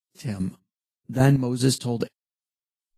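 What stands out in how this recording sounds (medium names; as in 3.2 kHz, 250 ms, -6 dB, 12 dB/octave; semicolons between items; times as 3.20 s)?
chopped level 2.5 Hz, depth 65%, duty 40%; Vorbis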